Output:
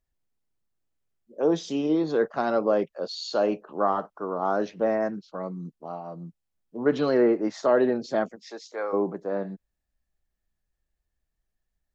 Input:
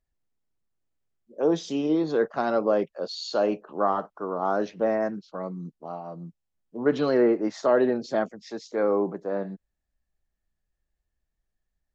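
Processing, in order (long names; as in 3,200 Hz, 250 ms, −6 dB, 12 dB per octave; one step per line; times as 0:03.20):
0:08.35–0:08.92: high-pass filter 320 Hz → 820 Hz 12 dB per octave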